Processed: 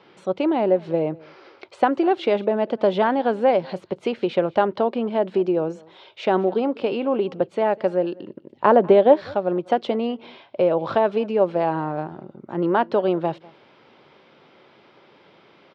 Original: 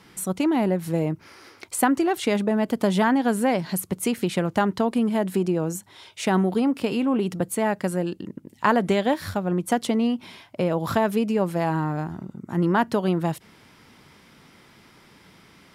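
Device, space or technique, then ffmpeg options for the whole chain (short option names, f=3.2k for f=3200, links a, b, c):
kitchen radio: -filter_complex "[0:a]asettb=1/sr,asplit=3[a][b][c];[a]atrim=end=8.524[d];[b]atrim=start=8.52:end=9.17,asetpts=PTS-STARTPTS,afade=t=in:d=0.004:c=qsin,afade=t=out:st=0.646:d=0.004:c=qsin,tiltshelf=f=1.3k:g=5.5[e];[c]atrim=start=9.166[f];[d][e]acrossfade=d=0.004:c1=hsin:c2=qsin[g];[g][f]acrossfade=d=0.004:c1=qsin:c2=hsin,highpass=180,equalizer=f=190:t=q:w=4:g=-5,equalizer=f=260:t=q:w=4:g=-4,equalizer=f=380:t=q:w=4:g=5,equalizer=f=560:t=q:w=4:g=9,equalizer=f=790:t=q:w=4:g=3,equalizer=f=1.9k:t=q:w=4:g=-5,lowpass=f=3.9k:w=0.5412,lowpass=f=3.9k:w=1.3066,aecho=1:1:197:0.0631"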